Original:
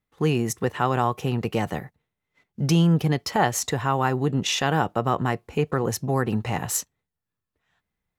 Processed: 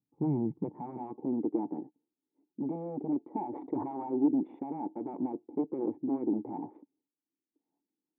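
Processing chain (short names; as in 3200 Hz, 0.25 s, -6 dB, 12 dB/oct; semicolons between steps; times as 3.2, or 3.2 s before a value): Wiener smoothing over 15 samples; dynamic EQ 900 Hz, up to +6 dB, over -38 dBFS, Q 3.3; limiter -12.5 dBFS, peak gain reduction 8 dB; wavefolder -20 dBFS; high-pass sweep 130 Hz -> 300 Hz, 0.32–1.44; vocal tract filter u; 3.49–4.19 sustainer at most 54 dB/s; gain +2.5 dB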